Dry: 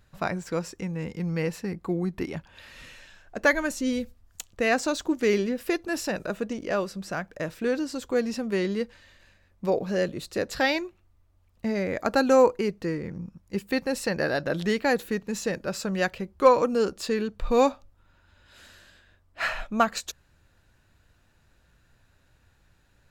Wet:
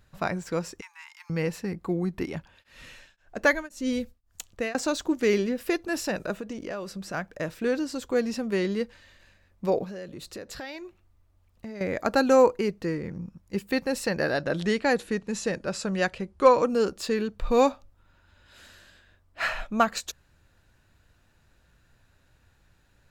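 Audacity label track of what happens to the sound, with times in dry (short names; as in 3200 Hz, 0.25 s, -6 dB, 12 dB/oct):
0.810000	1.300000	steep high-pass 860 Hz 96 dB/oct
2.380000	4.750000	beating tremolo nulls at 1.9 Hz
6.370000	7.140000	compressor 4:1, threshold -31 dBFS
9.840000	11.810000	compressor 4:1, threshold -37 dBFS
14.320000	16.700000	steep low-pass 11000 Hz 72 dB/oct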